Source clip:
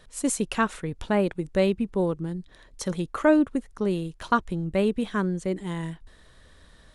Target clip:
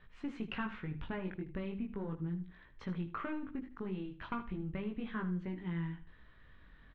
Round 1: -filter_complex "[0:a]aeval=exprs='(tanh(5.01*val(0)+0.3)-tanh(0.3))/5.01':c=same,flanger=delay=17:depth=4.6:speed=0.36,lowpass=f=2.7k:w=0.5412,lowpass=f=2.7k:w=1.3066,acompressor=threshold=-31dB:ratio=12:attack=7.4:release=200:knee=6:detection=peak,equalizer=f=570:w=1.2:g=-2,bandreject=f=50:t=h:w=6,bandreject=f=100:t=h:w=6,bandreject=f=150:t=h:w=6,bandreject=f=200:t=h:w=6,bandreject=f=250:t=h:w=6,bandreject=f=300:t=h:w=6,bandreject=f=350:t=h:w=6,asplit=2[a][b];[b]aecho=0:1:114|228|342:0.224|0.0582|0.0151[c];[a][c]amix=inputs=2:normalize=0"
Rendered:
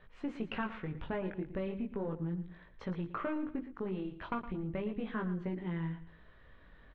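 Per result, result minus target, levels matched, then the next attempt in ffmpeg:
echo 37 ms late; 500 Hz band +3.5 dB
-filter_complex "[0:a]aeval=exprs='(tanh(5.01*val(0)+0.3)-tanh(0.3))/5.01':c=same,flanger=delay=17:depth=4.6:speed=0.36,lowpass=f=2.7k:w=0.5412,lowpass=f=2.7k:w=1.3066,acompressor=threshold=-31dB:ratio=12:attack=7.4:release=200:knee=6:detection=peak,equalizer=f=570:w=1.2:g=-2,bandreject=f=50:t=h:w=6,bandreject=f=100:t=h:w=6,bandreject=f=150:t=h:w=6,bandreject=f=200:t=h:w=6,bandreject=f=250:t=h:w=6,bandreject=f=300:t=h:w=6,bandreject=f=350:t=h:w=6,asplit=2[a][b];[b]aecho=0:1:77|154|231:0.224|0.0582|0.0151[c];[a][c]amix=inputs=2:normalize=0"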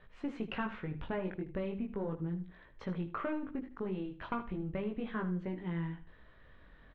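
500 Hz band +3.5 dB
-filter_complex "[0:a]aeval=exprs='(tanh(5.01*val(0)+0.3)-tanh(0.3))/5.01':c=same,flanger=delay=17:depth=4.6:speed=0.36,lowpass=f=2.7k:w=0.5412,lowpass=f=2.7k:w=1.3066,acompressor=threshold=-31dB:ratio=12:attack=7.4:release=200:knee=6:detection=peak,equalizer=f=570:w=1.2:g=-10.5,bandreject=f=50:t=h:w=6,bandreject=f=100:t=h:w=6,bandreject=f=150:t=h:w=6,bandreject=f=200:t=h:w=6,bandreject=f=250:t=h:w=6,bandreject=f=300:t=h:w=6,bandreject=f=350:t=h:w=6,asplit=2[a][b];[b]aecho=0:1:77|154|231:0.224|0.0582|0.0151[c];[a][c]amix=inputs=2:normalize=0"

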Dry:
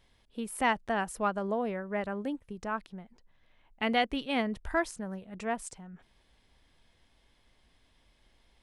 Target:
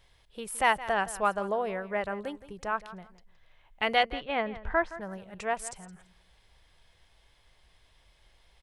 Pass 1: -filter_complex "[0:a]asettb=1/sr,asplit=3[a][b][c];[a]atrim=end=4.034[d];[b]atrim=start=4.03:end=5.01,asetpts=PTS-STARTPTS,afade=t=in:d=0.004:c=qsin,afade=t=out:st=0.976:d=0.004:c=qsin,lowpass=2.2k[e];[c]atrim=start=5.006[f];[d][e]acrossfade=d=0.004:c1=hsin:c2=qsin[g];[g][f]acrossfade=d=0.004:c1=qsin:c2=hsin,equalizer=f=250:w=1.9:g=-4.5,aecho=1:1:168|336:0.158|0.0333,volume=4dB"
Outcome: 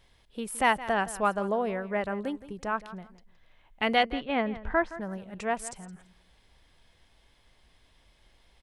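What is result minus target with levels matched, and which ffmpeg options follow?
250 Hz band +5.5 dB
-filter_complex "[0:a]asettb=1/sr,asplit=3[a][b][c];[a]atrim=end=4.034[d];[b]atrim=start=4.03:end=5.01,asetpts=PTS-STARTPTS,afade=t=in:d=0.004:c=qsin,afade=t=out:st=0.976:d=0.004:c=qsin,lowpass=2.2k[e];[c]atrim=start=5.006[f];[d][e]acrossfade=d=0.004:c1=hsin:c2=qsin[g];[g][f]acrossfade=d=0.004:c1=qsin:c2=hsin,equalizer=f=250:w=1.9:g=-14,aecho=1:1:168|336:0.158|0.0333,volume=4dB"

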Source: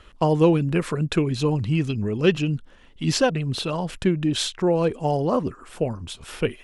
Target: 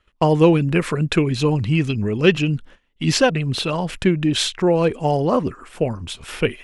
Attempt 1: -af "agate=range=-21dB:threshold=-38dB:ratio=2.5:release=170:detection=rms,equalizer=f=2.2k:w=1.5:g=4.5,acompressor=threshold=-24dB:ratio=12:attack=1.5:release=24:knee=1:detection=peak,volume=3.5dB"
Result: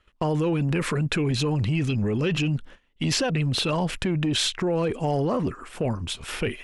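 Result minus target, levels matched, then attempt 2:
compressor: peak gain reduction +14 dB
-af "agate=range=-21dB:threshold=-38dB:ratio=2.5:release=170:detection=rms,equalizer=f=2.2k:w=1.5:g=4.5,volume=3.5dB"

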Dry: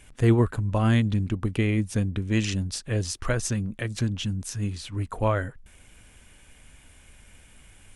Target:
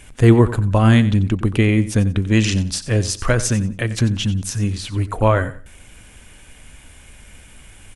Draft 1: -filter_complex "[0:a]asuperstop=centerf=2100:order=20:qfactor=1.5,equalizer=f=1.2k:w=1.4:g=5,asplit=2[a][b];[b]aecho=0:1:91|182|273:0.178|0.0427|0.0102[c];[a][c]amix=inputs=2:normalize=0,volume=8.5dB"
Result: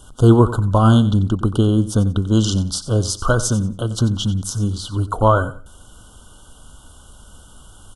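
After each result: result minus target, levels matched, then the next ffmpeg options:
2000 Hz band -5.5 dB; 1000 Hz band +3.5 dB
-filter_complex "[0:a]equalizer=f=1.2k:w=1.4:g=5,asplit=2[a][b];[b]aecho=0:1:91|182|273:0.178|0.0427|0.0102[c];[a][c]amix=inputs=2:normalize=0,volume=8.5dB"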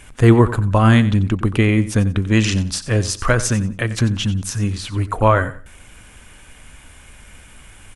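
1000 Hz band +3.5 dB
-filter_complex "[0:a]asplit=2[a][b];[b]aecho=0:1:91|182|273:0.178|0.0427|0.0102[c];[a][c]amix=inputs=2:normalize=0,volume=8.5dB"

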